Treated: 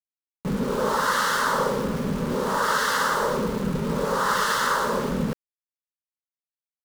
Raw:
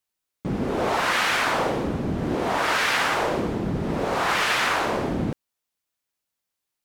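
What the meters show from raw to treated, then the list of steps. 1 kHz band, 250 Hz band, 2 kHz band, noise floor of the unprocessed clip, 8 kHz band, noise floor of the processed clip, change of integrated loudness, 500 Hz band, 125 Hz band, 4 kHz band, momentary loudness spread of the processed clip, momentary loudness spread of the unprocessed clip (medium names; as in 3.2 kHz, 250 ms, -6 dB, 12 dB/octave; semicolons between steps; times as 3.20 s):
+1.0 dB, 0.0 dB, -2.5 dB, -84 dBFS, +2.5 dB, under -85 dBFS, -0.5 dB, +0.5 dB, -0.5 dB, -3.0 dB, 6 LU, 8 LU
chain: static phaser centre 480 Hz, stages 8; spring tank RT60 2.9 s, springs 32/59 ms, chirp 60 ms, DRR 17.5 dB; small samples zeroed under -35 dBFS; trim +3 dB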